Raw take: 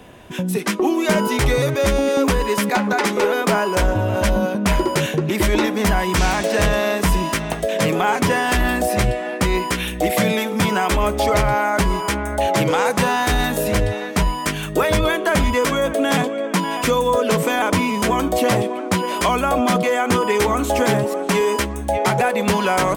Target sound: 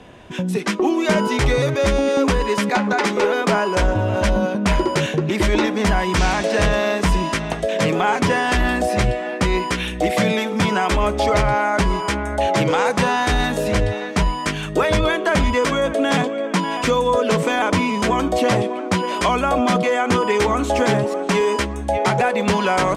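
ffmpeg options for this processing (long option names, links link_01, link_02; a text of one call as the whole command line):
ffmpeg -i in.wav -af "lowpass=7100" out.wav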